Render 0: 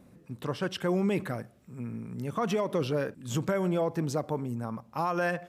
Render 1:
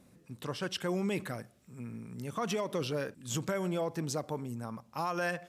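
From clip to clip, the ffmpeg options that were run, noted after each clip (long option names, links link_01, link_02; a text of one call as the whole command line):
ffmpeg -i in.wav -af "equalizer=frequency=7300:width_type=o:width=2.9:gain=8.5,volume=-5.5dB" out.wav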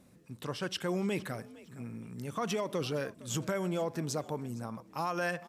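ffmpeg -i in.wav -filter_complex "[0:a]asplit=3[link_01][link_02][link_03];[link_02]adelay=460,afreqshift=56,volume=-20dB[link_04];[link_03]adelay=920,afreqshift=112,volume=-30.5dB[link_05];[link_01][link_04][link_05]amix=inputs=3:normalize=0" out.wav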